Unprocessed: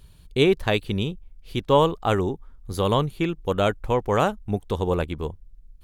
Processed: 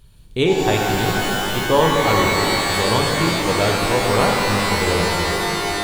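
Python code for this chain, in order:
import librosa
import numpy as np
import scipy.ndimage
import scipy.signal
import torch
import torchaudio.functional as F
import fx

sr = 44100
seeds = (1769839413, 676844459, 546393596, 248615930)

y = fx.rev_shimmer(x, sr, seeds[0], rt60_s=3.8, semitones=12, shimmer_db=-2, drr_db=-0.5)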